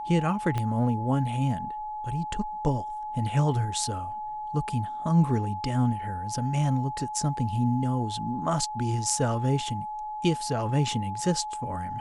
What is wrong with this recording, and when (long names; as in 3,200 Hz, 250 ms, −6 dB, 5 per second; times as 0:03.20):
whistle 850 Hz −32 dBFS
0:00.58: click −16 dBFS